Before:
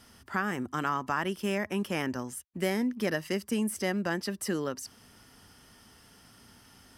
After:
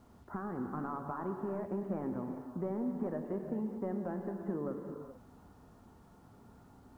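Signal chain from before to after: soft clip -23 dBFS, distortion -16 dB; compressor 2.5:1, threshold -36 dBFS, peak gain reduction 6 dB; LPF 1100 Hz 24 dB/oct; non-linear reverb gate 0.46 s flat, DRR 3.5 dB; bit-crush 12-bit

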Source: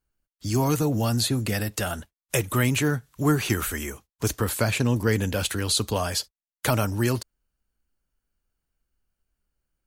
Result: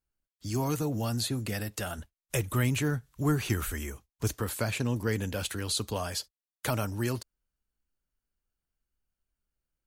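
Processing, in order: 1.98–4.3 low shelf 88 Hz +11.5 dB; gain -7 dB

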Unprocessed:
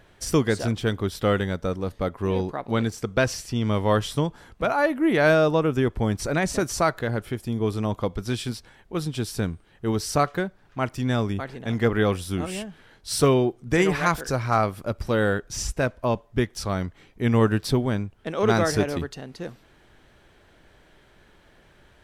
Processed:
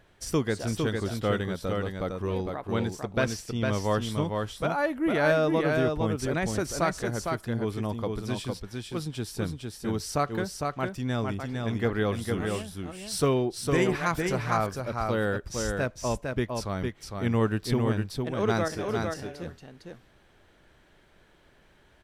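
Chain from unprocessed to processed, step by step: 18.68–19.15 resonator 81 Hz, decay 0.23 s, harmonics all, mix 80%; echo 0.456 s -4 dB; gain -5.5 dB

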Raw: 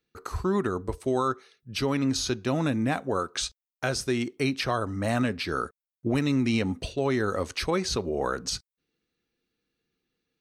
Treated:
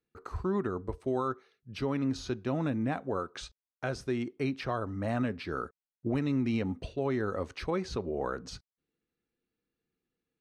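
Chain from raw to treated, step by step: LPF 1600 Hz 6 dB/oct; gain -4.5 dB

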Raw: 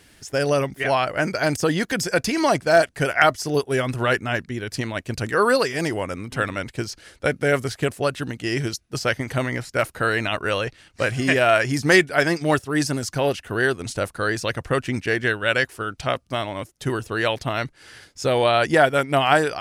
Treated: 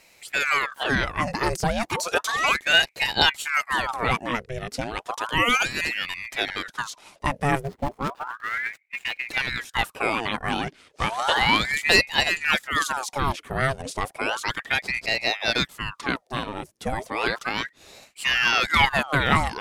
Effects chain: 7.61–9.29 median filter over 41 samples; ring modulator with a swept carrier 1300 Hz, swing 80%, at 0.33 Hz

